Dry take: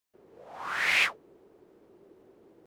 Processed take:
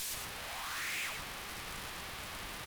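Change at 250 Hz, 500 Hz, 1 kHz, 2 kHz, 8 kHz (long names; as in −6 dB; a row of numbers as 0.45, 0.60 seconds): +0.5, −3.5, −5.0, −11.0, +4.0 decibels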